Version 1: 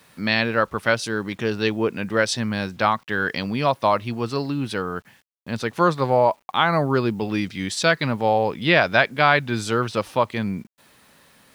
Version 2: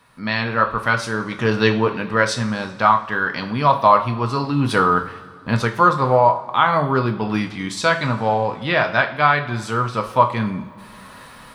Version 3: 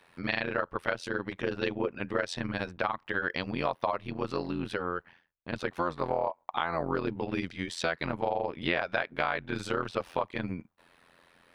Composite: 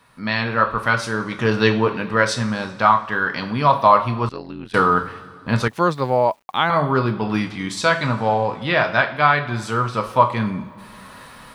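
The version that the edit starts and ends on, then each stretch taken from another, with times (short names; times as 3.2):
2
4.29–4.74 from 3
5.68–6.7 from 1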